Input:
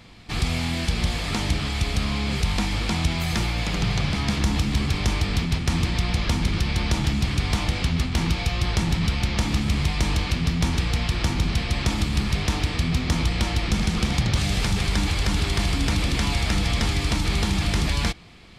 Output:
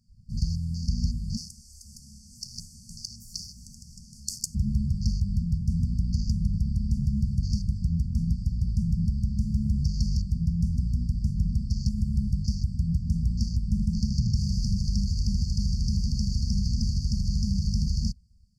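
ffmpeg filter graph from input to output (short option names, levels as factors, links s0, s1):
-filter_complex "[0:a]asettb=1/sr,asplit=3[s0][s1][s2];[s0]atrim=end=1.374[s3];[s1]atrim=start=1.37:end=4.55,asetpts=PTS-STARTPTS,afade=t=in:d=0.004:c=qsin,afade=t=out:st=3.176:d=0.004:c=qsin,highpass=f=270:w=0.5412,highpass=f=270:w=1.3066,highshelf=f=4700:t=q:w=1.5:g=10.5,aeval=exprs='val(0)*sin(2*PI*770*n/s)':c=same[s4];[s2]atrim=start=4.546[s5];[s3][s4]acrossfade=d=0.004:c1=hsin:c2=qsin[s6];[s6][s5]acrossfade=d=0.004:c1=qsin:c2=hsin,afwtdn=0.0251,afftfilt=real='re*(1-between(b*sr/4096,240,4400))':imag='im*(1-between(b*sr/4096,240,4400))':win_size=4096:overlap=0.75,volume=0.794"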